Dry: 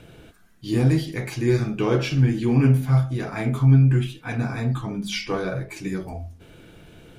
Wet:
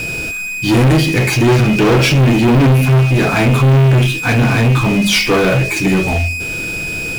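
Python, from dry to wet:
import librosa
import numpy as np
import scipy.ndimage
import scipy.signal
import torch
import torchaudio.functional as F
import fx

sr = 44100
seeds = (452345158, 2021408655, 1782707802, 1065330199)

y = x + 10.0 ** (-37.0 / 20.0) * np.sin(2.0 * np.pi * 2500.0 * np.arange(len(x)) / sr)
y = fx.leveller(y, sr, passes=5)
y = fx.quant_dither(y, sr, seeds[0], bits=8, dither='triangular')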